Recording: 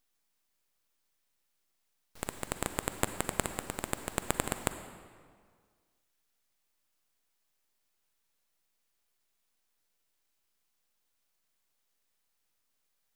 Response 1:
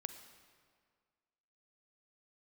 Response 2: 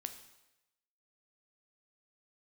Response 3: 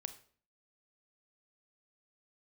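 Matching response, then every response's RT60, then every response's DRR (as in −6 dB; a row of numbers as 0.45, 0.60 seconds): 1; 1.9, 0.95, 0.45 seconds; 9.0, 7.5, 9.5 decibels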